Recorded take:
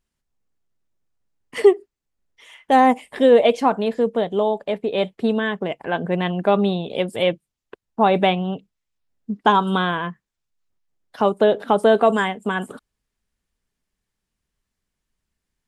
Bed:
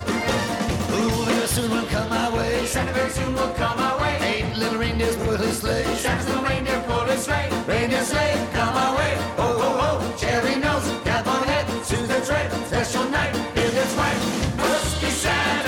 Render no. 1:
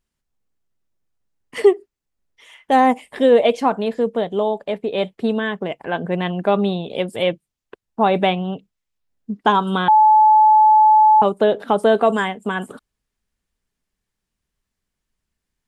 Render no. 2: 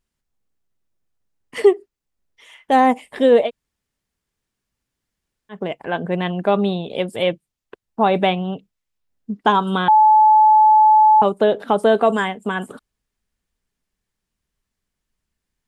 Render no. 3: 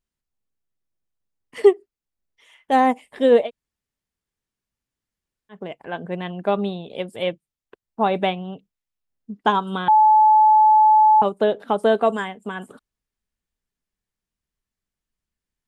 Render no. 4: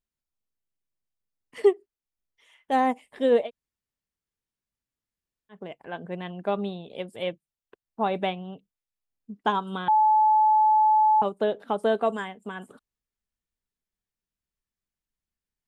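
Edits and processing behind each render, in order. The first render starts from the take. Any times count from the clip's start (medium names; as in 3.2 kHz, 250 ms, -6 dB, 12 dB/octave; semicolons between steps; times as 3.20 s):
9.88–11.22 s: bleep 862 Hz -8 dBFS
3.46–5.54 s: room tone, crossfade 0.10 s
upward expansion 1.5:1, over -22 dBFS
trim -6 dB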